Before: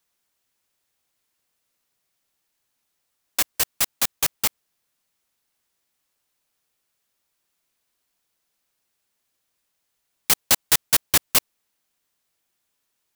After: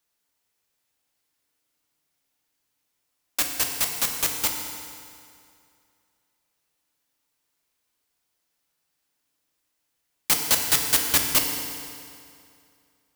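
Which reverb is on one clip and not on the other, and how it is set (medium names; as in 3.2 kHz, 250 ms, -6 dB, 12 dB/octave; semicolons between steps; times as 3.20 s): FDN reverb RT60 2.4 s, low-frequency decay 1×, high-frequency decay 0.85×, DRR 2 dB; trim -3 dB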